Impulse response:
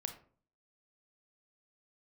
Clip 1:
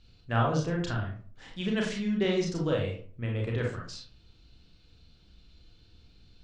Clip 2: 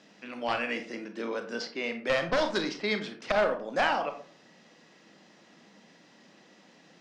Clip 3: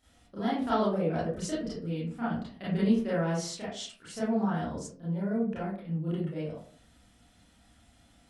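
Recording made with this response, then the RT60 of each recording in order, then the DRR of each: 2; 0.45 s, 0.45 s, 0.45 s; -1.5 dB, 6.5 dB, -10.5 dB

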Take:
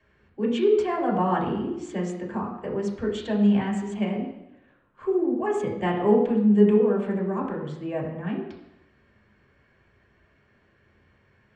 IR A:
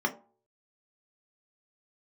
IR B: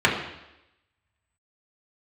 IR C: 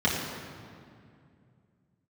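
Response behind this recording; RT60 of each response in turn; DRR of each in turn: B; 0.45 s, 0.90 s, 2.4 s; 1.5 dB, -4.0 dB, -7.0 dB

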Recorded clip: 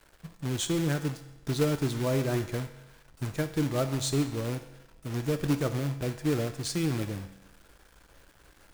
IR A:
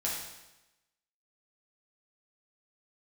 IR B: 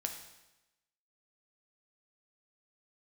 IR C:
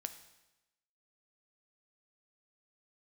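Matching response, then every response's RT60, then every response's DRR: C; 1.0 s, 1.0 s, 1.0 s; -5.5 dB, 3.5 dB, 8.5 dB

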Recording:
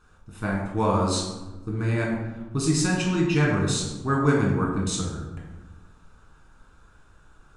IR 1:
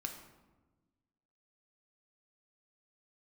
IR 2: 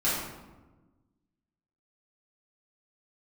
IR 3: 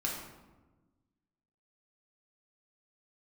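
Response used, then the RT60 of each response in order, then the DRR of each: 3; 1.2 s, 1.2 s, 1.2 s; 3.5 dB, -9.5 dB, -2.5 dB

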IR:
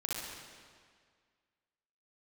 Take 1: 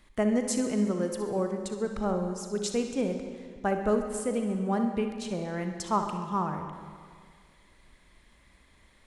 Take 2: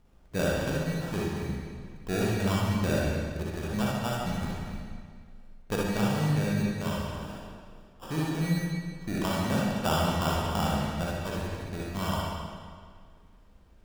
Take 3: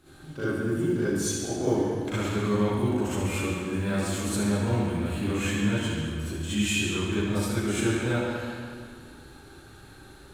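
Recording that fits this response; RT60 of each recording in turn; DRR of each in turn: 2; 1.9 s, 1.9 s, 1.9 s; 4.5 dB, -5.5 dB, -13.0 dB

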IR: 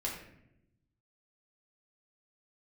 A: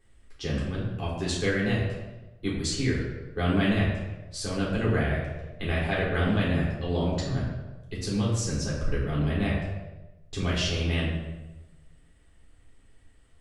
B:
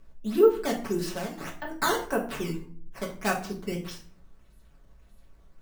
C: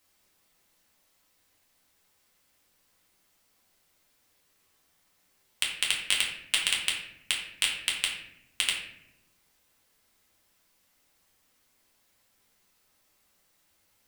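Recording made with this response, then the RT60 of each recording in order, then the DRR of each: C; 1.1 s, 0.45 s, 0.80 s; -6.5 dB, -1.5 dB, -4.0 dB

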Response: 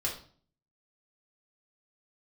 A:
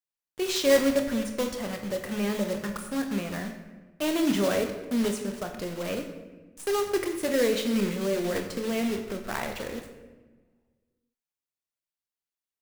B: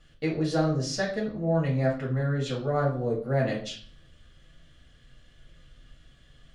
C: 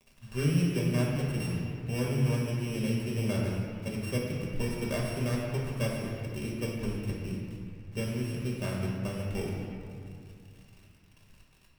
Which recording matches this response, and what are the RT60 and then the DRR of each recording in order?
B; 1.3 s, 0.45 s, 2.3 s; 4.0 dB, -3.5 dB, -4.0 dB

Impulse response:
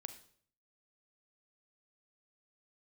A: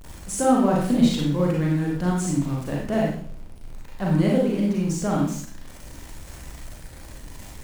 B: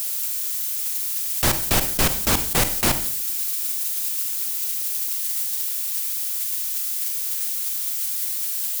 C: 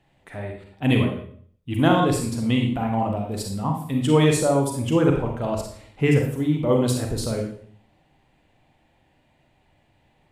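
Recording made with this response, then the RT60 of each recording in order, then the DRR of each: B; 0.55 s, 0.55 s, 0.55 s; -3.5 dB, 9.0 dB, 1.5 dB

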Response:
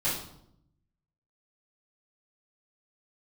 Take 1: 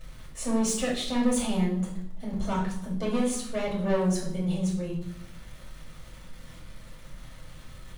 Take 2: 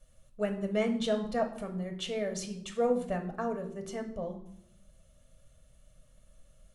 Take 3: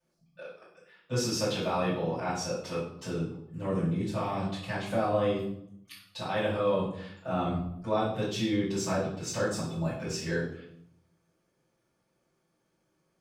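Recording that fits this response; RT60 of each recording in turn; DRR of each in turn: 3; 0.75 s, 0.75 s, 0.75 s; -4.5 dB, 4.0 dB, -13.0 dB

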